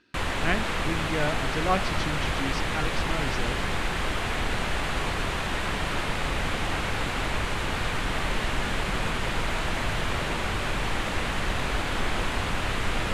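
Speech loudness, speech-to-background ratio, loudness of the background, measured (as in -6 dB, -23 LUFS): -32.0 LUFS, -3.5 dB, -28.5 LUFS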